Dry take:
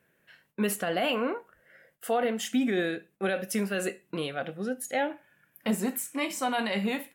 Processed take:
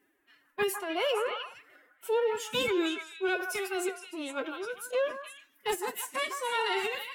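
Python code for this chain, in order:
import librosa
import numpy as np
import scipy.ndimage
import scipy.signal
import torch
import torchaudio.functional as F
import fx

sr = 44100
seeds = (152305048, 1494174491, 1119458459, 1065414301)

y = fx.pitch_keep_formants(x, sr, semitones=11.5)
y = y * (1.0 - 0.47 / 2.0 + 0.47 / 2.0 * np.cos(2.0 * np.pi * 1.8 * (np.arange(len(y)) / sr)))
y = fx.echo_stepped(y, sr, ms=154, hz=1100.0, octaves=1.4, feedback_pct=70, wet_db=-2.5)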